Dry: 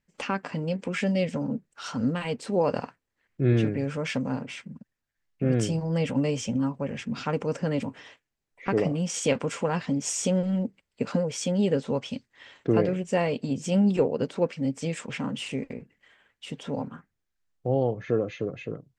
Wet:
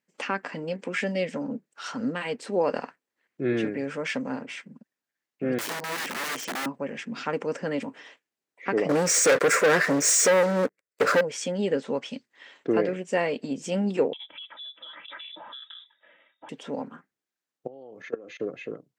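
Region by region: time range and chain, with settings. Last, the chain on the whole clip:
0:05.58–0:06.66: high-pass filter 180 Hz + wrap-around overflow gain 27 dB
0:08.89–0:11.21: phaser with its sweep stopped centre 860 Hz, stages 6 + leveller curve on the samples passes 5
0:14.13–0:16.49: comb filter 2.9 ms, depth 98% + downward compressor, threshold −39 dBFS + voice inversion scrambler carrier 3,700 Hz
0:17.67–0:18.40: high-pass filter 140 Hz + high-shelf EQ 5,800 Hz +7.5 dB + output level in coarse steps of 22 dB
whole clip: Chebyshev high-pass filter 290 Hz, order 2; dynamic equaliser 1,800 Hz, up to +6 dB, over −51 dBFS, Q 2.1

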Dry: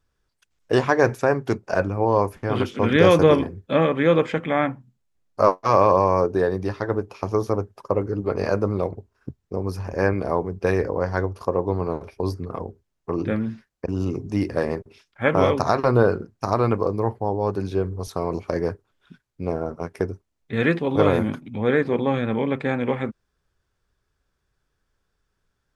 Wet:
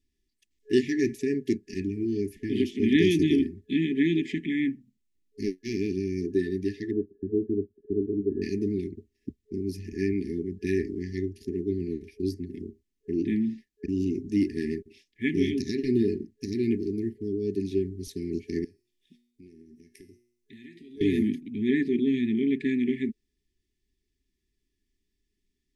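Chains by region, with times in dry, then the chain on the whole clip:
0:06.91–0:08.42: mu-law and A-law mismatch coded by A + linear-phase brick-wall low-pass 1,700 Hz + parametric band 450 Hz +3.5 dB 1 octave
0:18.64–0:21.01: high-shelf EQ 3,500 Hz +12 dB + downward compressor, threshold −33 dBFS + tuned comb filter 120 Hz, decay 0.68 s, mix 70%
whole clip: brick-wall band-stop 420–1,700 Hz; octave-band graphic EQ 125/250/1,000 Hz −11/+8/−9 dB; level −3.5 dB

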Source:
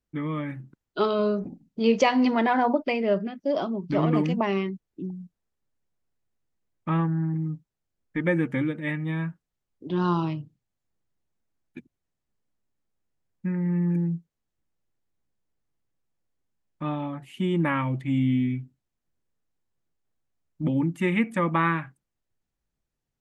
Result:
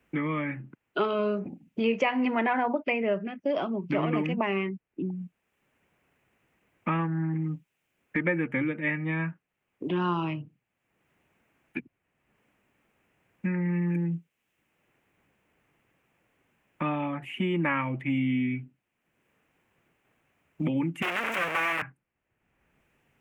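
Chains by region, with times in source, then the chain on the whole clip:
0:21.02–0:21.82: sign of each sample alone + high-pass filter 670 Hz + highs frequency-modulated by the lows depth 0.5 ms
whole clip: high-pass filter 180 Hz 6 dB per octave; high shelf with overshoot 3,300 Hz −9 dB, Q 3; multiband upward and downward compressor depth 70%; level −1.5 dB

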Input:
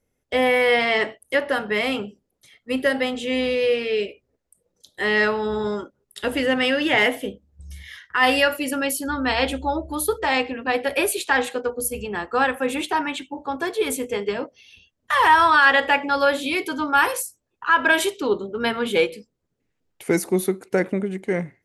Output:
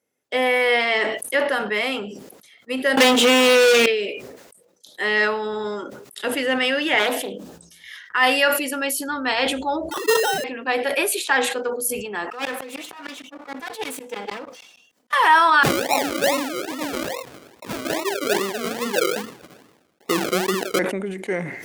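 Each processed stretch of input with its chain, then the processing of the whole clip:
0:02.97–0:03.86: leveller curve on the samples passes 5 + multiband upward and downward compressor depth 100%
0:06.99–0:07.84: high-pass filter 180 Hz + parametric band 2,100 Hz −9 dB 0.25 octaves + highs frequency-modulated by the lows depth 0.28 ms
0:09.91–0:10.44: three sine waves on the formant tracks + sample-rate reduction 2,300 Hz + level that may fall only so fast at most 45 dB per second
0:12.30–0:15.13: lower of the sound and its delayed copy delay 4 ms + tremolo with a ramp in dB swelling 6.5 Hz, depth 28 dB
0:15.63–0:20.79: Butterworth low-pass 1,200 Hz + sample-and-hold swept by an LFO 39×, swing 60% 2.4 Hz
whole clip: high-pass filter 260 Hz 12 dB per octave; parametric band 390 Hz −2.5 dB 2.3 octaves; level that may fall only so fast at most 54 dB per second; level +1 dB

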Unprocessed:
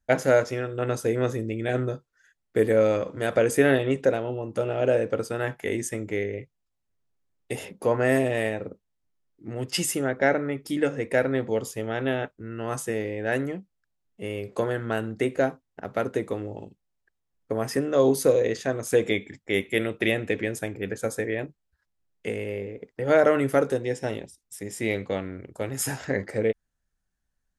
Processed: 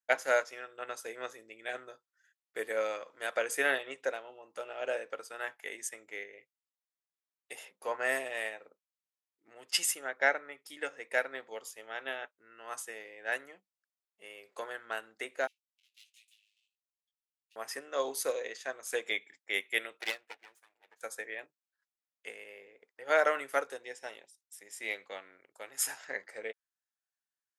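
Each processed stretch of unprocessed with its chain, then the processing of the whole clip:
0:15.47–0:17.56: lower of the sound and its delayed copy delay 8.5 ms + Chebyshev high-pass filter 2,600 Hz, order 5 + chorus effect 1.3 Hz, delay 19 ms, depth 2.5 ms
0:20.01–0:21.01: lower of the sound and its delayed copy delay 8.5 ms + expander for the loud parts 2.5 to 1, over −35 dBFS
whole clip: high-pass filter 910 Hz 12 dB per octave; expander for the loud parts 1.5 to 1, over −41 dBFS

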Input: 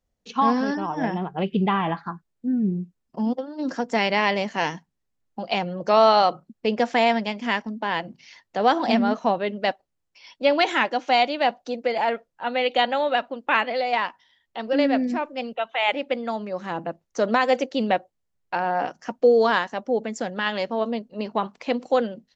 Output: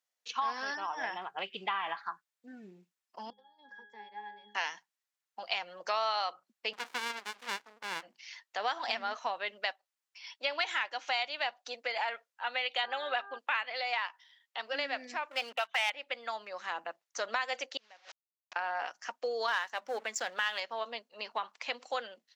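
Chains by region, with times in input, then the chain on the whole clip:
0:03.30–0:04.55: resonances in every octave G#, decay 0.42 s + multiband upward and downward compressor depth 70%
0:06.73–0:08.03: high-pass filter 240 Hz + windowed peak hold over 65 samples
0:12.83–0:13.37: high-shelf EQ 5,300 Hz −8 dB + comb filter 4 ms, depth 79% + hum with harmonics 400 Hz, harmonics 4, −38 dBFS −3 dB per octave
0:15.31–0:15.90: leveller curve on the samples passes 2 + hum removal 64.39 Hz, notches 5
0:17.77–0:18.56: linear delta modulator 32 kbit/s, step −27 dBFS + gate with flip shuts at −21 dBFS, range −27 dB + downward compressor 5 to 1, threshold −41 dBFS
0:19.48–0:20.60: mains-hum notches 50/100/150/200/250 Hz + leveller curve on the samples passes 1
whole clip: high-pass filter 1,200 Hz 12 dB per octave; downward compressor 3 to 1, threshold −31 dBFS

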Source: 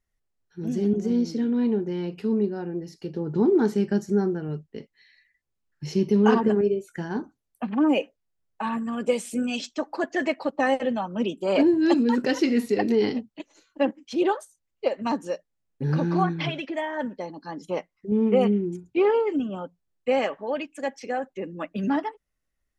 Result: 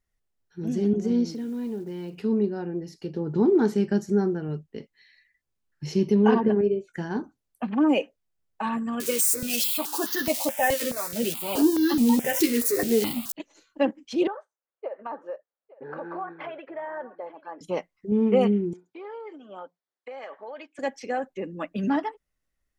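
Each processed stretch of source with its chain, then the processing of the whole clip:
0:01.32–0:02.21: downward compressor 2 to 1, threshold −35 dBFS + floating-point word with a short mantissa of 4 bits
0:06.14–0:06.94: high-frequency loss of the air 180 metres + notch filter 1,300 Hz, Q 5.2
0:09.00–0:13.32: spike at every zero crossing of −17.5 dBFS + double-tracking delay 13 ms −6 dB + step-sequenced phaser 4.7 Hz 200–2,400 Hz
0:14.27–0:17.61: Chebyshev band-pass filter 490–1,500 Hz + downward compressor 3 to 1, threshold −31 dBFS + single-tap delay 861 ms −19 dB
0:18.73–0:20.79: parametric band 2,700 Hz −11.5 dB 0.2 octaves + downward compressor 12 to 1, threshold −31 dBFS + band-pass filter 530–4,400 Hz
whole clip: no processing

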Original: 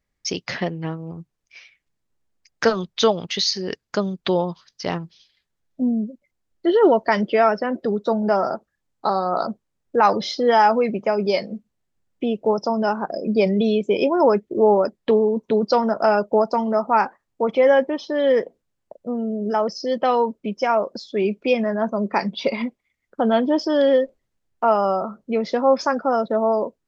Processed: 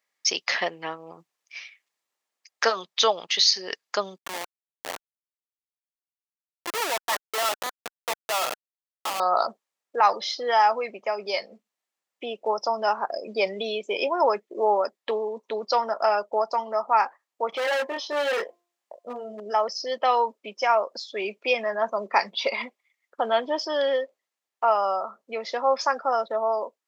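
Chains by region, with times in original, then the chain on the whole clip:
0:04.18–0:09.20: resonant band-pass 1,300 Hz, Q 1.4 + comparator with hysteresis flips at −26.5 dBFS
0:17.50–0:19.40: double-tracking delay 24 ms −3 dB + hum removal 347.9 Hz, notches 3 + hard clipping −18.5 dBFS
whole clip: high-pass filter 760 Hz 12 dB per octave; notch filter 1,500 Hz, Q 12; speech leveller 2 s

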